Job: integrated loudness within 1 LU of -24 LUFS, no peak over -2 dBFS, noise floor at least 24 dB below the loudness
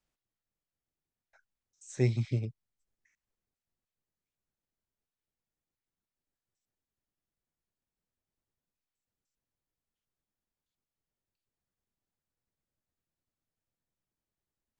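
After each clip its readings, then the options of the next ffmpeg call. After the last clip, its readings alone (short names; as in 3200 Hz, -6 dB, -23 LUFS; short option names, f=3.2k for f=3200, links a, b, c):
loudness -32.0 LUFS; peak -16.0 dBFS; loudness target -24.0 LUFS
-> -af "volume=8dB"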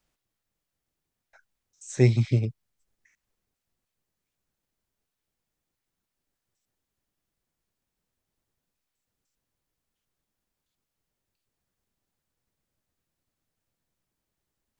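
loudness -24.0 LUFS; peak -8.0 dBFS; noise floor -85 dBFS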